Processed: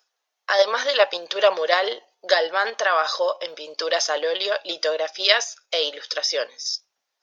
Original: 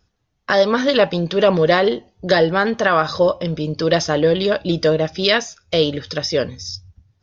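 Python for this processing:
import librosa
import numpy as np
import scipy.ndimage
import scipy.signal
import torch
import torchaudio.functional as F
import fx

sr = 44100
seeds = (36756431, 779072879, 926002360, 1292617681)

p1 = scipy.signal.sosfilt(scipy.signal.butter(4, 560.0, 'highpass', fs=sr, output='sos'), x)
p2 = fx.high_shelf(p1, sr, hz=5500.0, db=7.0)
p3 = fx.level_steps(p2, sr, step_db=14)
p4 = p2 + F.gain(torch.from_numpy(p3), 1.0).numpy()
y = F.gain(torch.from_numpy(p4), -5.5).numpy()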